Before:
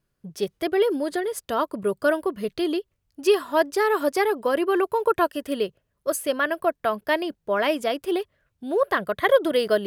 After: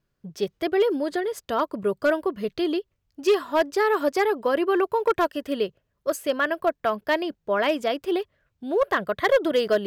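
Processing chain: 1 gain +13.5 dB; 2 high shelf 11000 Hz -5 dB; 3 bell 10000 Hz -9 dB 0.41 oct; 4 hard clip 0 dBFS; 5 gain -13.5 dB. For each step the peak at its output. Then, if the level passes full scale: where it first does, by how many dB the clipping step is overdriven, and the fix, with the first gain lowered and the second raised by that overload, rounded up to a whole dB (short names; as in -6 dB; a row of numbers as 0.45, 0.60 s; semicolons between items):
+5.5, +5.5, +5.5, 0.0, -13.5 dBFS; step 1, 5.5 dB; step 1 +7.5 dB, step 5 -7.5 dB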